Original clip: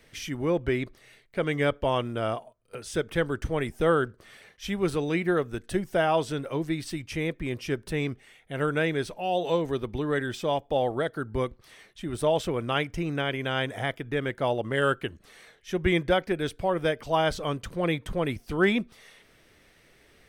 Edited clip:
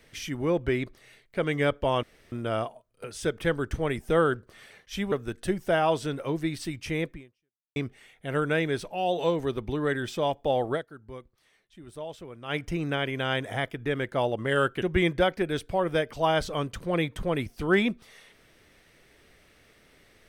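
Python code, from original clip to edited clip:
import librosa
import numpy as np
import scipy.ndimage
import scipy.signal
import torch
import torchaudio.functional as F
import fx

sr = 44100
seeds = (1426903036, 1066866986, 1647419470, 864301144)

y = fx.edit(x, sr, fx.insert_room_tone(at_s=2.03, length_s=0.29),
    fx.cut(start_s=4.83, length_s=0.55),
    fx.fade_out_span(start_s=7.37, length_s=0.65, curve='exp'),
    fx.fade_down_up(start_s=11.01, length_s=1.81, db=-14.0, fade_s=0.13, curve='qua'),
    fx.cut(start_s=15.08, length_s=0.64), tone=tone)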